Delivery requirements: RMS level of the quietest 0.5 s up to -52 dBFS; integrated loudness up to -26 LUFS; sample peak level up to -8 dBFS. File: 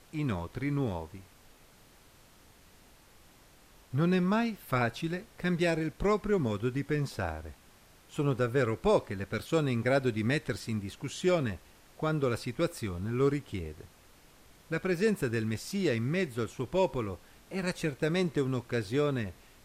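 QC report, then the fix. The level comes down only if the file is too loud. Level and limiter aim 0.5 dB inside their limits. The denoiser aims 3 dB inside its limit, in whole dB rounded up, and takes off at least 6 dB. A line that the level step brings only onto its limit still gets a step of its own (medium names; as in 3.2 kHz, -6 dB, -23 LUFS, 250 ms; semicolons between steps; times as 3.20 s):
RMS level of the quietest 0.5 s -58 dBFS: pass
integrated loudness -31.5 LUFS: pass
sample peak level -13.0 dBFS: pass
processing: none needed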